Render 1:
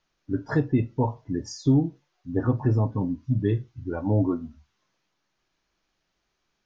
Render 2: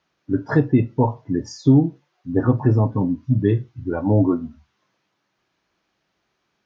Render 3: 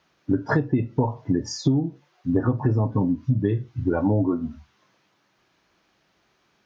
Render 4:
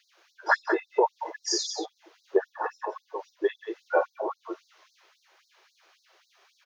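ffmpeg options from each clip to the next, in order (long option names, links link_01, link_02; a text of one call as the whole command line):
ffmpeg -i in.wav -af "highpass=90,highshelf=frequency=5300:gain=-10.5,volume=6.5dB" out.wav
ffmpeg -i in.wav -af "acompressor=threshold=-24dB:ratio=8,volume=6dB" out.wav
ffmpeg -i in.wav -filter_complex "[0:a]asplit=2[link_01][link_02];[link_02]aecho=0:1:55.39|180.8:0.355|0.398[link_03];[link_01][link_03]amix=inputs=2:normalize=0,afftfilt=real='re*gte(b*sr/1024,310*pow(3900/310,0.5+0.5*sin(2*PI*3.7*pts/sr)))':imag='im*gte(b*sr/1024,310*pow(3900/310,0.5+0.5*sin(2*PI*3.7*pts/sr)))':win_size=1024:overlap=0.75,volume=5dB" out.wav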